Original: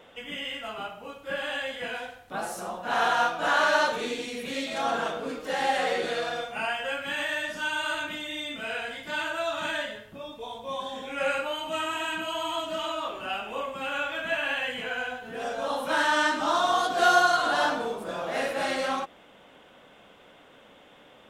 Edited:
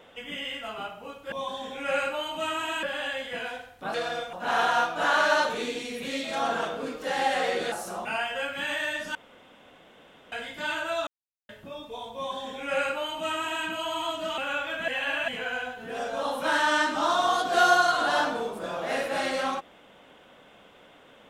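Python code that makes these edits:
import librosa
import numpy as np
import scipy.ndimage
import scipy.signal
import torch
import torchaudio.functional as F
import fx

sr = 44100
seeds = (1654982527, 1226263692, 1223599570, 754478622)

y = fx.edit(x, sr, fx.swap(start_s=2.43, length_s=0.33, other_s=6.15, other_length_s=0.39),
    fx.room_tone_fill(start_s=7.64, length_s=1.17),
    fx.silence(start_s=9.56, length_s=0.42),
    fx.duplicate(start_s=10.64, length_s=1.51, to_s=1.32),
    fx.cut(start_s=12.87, length_s=0.96),
    fx.reverse_span(start_s=14.33, length_s=0.4), tone=tone)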